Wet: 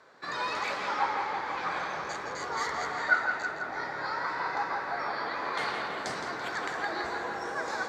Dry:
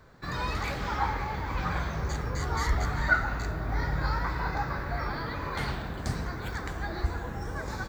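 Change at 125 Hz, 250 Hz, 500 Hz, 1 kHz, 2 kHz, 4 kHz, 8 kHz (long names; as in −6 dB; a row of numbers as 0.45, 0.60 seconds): −21.0, −7.0, +1.0, +2.0, +2.0, +2.0, −0.5 decibels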